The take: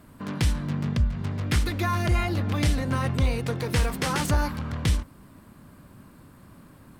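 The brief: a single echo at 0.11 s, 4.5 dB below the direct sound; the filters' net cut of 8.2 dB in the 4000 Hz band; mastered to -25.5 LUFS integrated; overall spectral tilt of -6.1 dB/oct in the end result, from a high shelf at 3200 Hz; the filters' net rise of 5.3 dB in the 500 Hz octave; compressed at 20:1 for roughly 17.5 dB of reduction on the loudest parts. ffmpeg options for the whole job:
-af "equalizer=f=500:t=o:g=6.5,highshelf=f=3.2k:g=-4,equalizer=f=4k:t=o:g=-8,acompressor=threshold=-35dB:ratio=20,aecho=1:1:110:0.596,volume=14.5dB"

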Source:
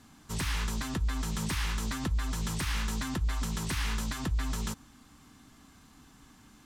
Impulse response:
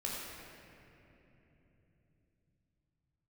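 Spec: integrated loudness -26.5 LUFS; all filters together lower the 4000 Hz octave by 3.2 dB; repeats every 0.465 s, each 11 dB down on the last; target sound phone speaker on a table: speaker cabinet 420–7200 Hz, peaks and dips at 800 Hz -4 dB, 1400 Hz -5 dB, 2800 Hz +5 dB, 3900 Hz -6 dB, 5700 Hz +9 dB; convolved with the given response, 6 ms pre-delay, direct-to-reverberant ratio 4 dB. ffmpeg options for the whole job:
-filter_complex "[0:a]equalizer=f=4k:t=o:g=-7.5,aecho=1:1:465|930|1395:0.282|0.0789|0.0221,asplit=2[a][b];[1:a]atrim=start_sample=2205,adelay=6[c];[b][c]afir=irnorm=-1:irlink=0,volume=-7dB[d];[a][d]amix=inputs=2:normalize=0,highpass=f=420:w=0.5412,highpass=f=420:w=1.3066,equalizer=f=800:t=q:w=4:g=-4,equalizer=f=1.4k:t=q:w=4:g=-5,equalizer=f=2.8k:t=q:w=4:g=5,equalizer=f=3.9k:t=q:w=4:g=-6,equalizer=f=5.7k:t=q:w=4:g=9,lowpass=f=7.2k:w=0.5412,lowpass=f=7.2k:w=1.3066,volume=12dB"

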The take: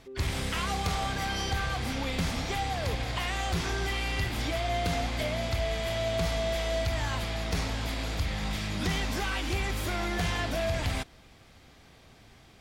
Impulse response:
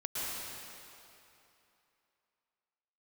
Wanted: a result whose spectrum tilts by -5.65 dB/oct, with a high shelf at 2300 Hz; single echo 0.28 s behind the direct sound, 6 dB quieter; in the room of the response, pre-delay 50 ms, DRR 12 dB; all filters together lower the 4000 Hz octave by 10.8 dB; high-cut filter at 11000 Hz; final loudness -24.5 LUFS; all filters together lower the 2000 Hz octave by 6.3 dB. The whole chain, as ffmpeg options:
-filter_complex "[0:a]lowpass=11k,equalizer=f=2k:t=o:g=-3,highshelf=f=2.3k:g=-5.5,equalizer=f=4k:t=o:g=-8,aecho=1:1:280:0.501,asplit=2[a][b];[1:a]atrim=start_sample=2205,adelay=50[c];[b][c]afir=irnorm=-1:irlink=0,volume=-17dB[d];[a][d]amix=inputs=2:normalize=0,volume=7dB"

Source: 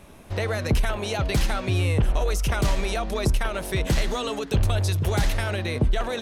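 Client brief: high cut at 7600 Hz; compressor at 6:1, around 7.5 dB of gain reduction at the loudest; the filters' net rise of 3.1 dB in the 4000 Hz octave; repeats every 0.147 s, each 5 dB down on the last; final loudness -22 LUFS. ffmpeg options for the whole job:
-af "lowpass=7.6k,equalizer=f=4k:t=o:g=4,acompressor=threshold=-25dB:ratio=6,aecho=1:1:147|294|441|588|735|882|1029:0.562|0.315|0.176|0.0988|0.0553|0.031|0.0173,volume=5.5dB"

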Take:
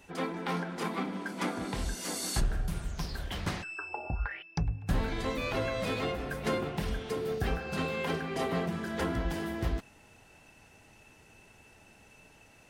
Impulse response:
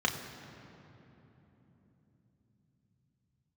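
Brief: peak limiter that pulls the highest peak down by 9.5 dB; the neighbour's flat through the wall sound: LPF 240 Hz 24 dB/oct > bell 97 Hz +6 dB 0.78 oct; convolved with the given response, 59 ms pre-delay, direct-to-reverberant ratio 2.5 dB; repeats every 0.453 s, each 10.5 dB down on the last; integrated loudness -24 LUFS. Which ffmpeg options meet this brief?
-filter_complex "[0:a]alimiter=level_in=4dB:limit=-24dB:level=0:latency=1,volume=-4dB,aecho=1:1:453|906|1359:0.299|0.0896|0.0269,asplit=2[a][b];[1:a]atrim=start_sample=2205,adelay=59[c];[b][c]afir=irnorm=-1:irlink=0,volume=-12dB[d];[a][d]amix=inputs=2:normalize=0,lowpass=f=240:w=0.5412,lowpass=f=240:w=1.3066,equalizer=f=97:t=o:w=0.78:g=6,volume=14dB"

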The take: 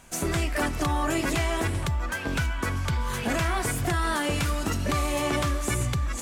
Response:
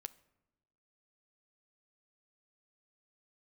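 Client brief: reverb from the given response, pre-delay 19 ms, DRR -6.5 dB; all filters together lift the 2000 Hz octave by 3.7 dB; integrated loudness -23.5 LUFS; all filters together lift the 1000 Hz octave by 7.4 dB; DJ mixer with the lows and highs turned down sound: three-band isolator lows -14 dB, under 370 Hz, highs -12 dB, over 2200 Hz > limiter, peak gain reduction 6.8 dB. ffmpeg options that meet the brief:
-filter_complex "[0:a]equalizer=f=1k:t=o:g=8.5,equalizer=f=2k:t=o:g=4.5,asplit=2[a][b];[1:a]atrim=start_sample=2205,adelay=19[c];[b][c]afir=irnorm=-1:irlink=0,volume=11dB[d];[a][d]amix=inputs=2:normalize=0,acrossover=split=370 2200:gain=0.2 1 0.251[e][f][g];[e][f][g]amix=inputs=3:normalize=0,volume=-3.5dB,alimiter=limit=-13.5dB:level=0:latency=1"

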